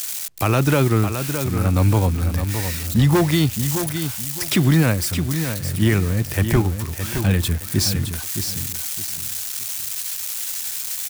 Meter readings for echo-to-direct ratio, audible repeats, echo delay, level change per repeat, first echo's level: −7.5 dB, 3, 616 ms, −11.0 dB, −8.0 dB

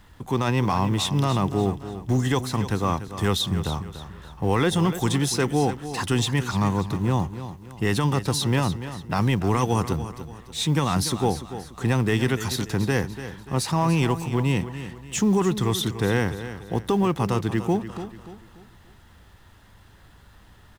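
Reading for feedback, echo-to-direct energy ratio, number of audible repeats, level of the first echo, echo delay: 39%, −11.5 dB, 3, −12.0 dB, 291 ms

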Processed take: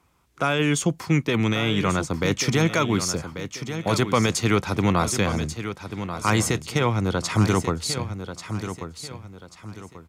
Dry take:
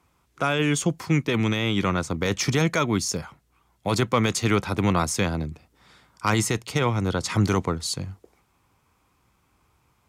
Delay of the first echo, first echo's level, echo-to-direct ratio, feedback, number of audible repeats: 1,138 ms, −10.0 dB, −9.5 dB, 34%, 3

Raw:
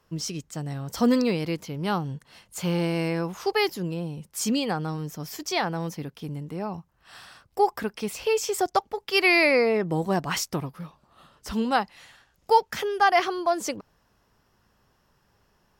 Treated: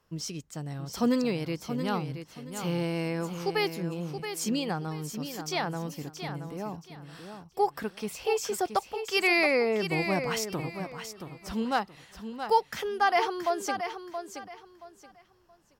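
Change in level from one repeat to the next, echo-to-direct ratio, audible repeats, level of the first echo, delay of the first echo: −12.0 dB, −8.0 dB, 3, −8.5 dB, 675 ms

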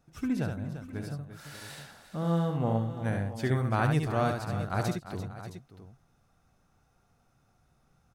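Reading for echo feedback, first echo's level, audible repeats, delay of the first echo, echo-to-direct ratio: repeats not evenly spaced, −5.0 dB, 4, 71 ms, −3.5 dB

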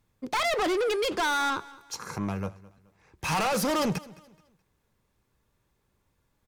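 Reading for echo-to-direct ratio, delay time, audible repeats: −20.5 dB, 213 ms, 2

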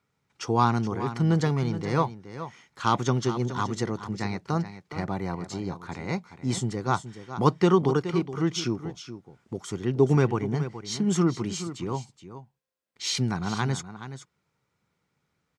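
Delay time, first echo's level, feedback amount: 423 ms, −12.0 dB, repeats not evenly spaced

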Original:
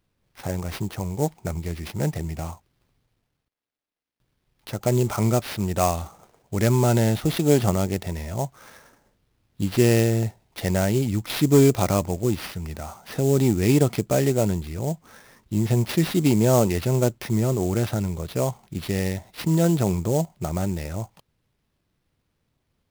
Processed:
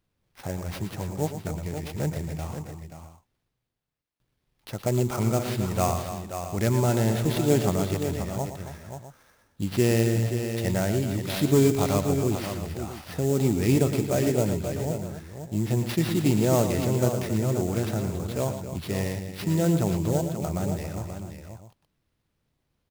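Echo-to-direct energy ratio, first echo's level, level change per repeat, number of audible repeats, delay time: −4.5 dB, −10.0 dB, repeats not evenly spaced, 4, 113 ms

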